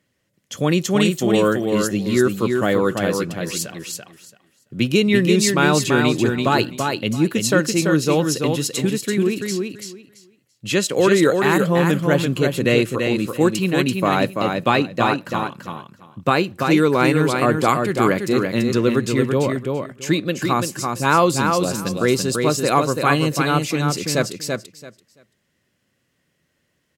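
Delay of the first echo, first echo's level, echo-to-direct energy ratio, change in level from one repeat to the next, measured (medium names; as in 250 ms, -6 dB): 336 ms, -4.5 dB, -4.5 dB, -15.0 dB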